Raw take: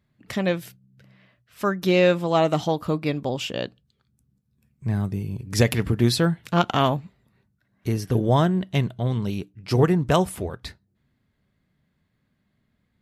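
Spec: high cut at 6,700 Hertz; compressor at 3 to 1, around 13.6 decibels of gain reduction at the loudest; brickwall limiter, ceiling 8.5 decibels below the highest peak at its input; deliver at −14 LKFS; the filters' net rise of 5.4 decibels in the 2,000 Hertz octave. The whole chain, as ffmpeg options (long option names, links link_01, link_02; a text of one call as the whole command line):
ffmpeg -i in.wav -af "lowpass=6700,equalizer=frequency=2000:width_type=o:gain=7,acompressor=threshold=-31dB:ratio=3,volume=21.5dB,alimiter=limit=-2.5dB:level=0:latency=1" out.wav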